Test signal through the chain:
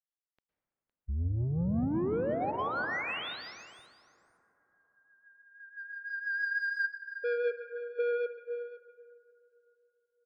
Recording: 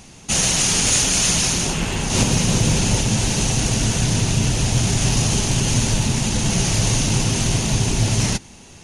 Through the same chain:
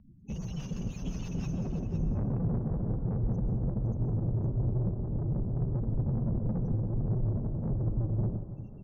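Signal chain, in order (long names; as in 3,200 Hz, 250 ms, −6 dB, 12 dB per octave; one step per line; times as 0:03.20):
expanding power law on the bin magnitudes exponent 1.9
notch filter 6,900 Hz, Q 10
gate on every frequency bin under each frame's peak −15 dB strong
in parallel at 0 dB: brickwall limiter −18.5 dBFS
on the sum: pitch vibrato 7.7 Hz 8.3 cents
rotating-speaker cabinet horn 6 Hz
soft clipping −22 dBFS
high-frequency loss of the air 310 metres
single-tap delay 510 ms −12.5 dB
dense smooth reverb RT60 3.5 s, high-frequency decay 0.25×, pre-delay 100 ms, DRR 6 dB
expander for the loud parts 1.5 to 1, over −44 dBFS
level −5.5 dB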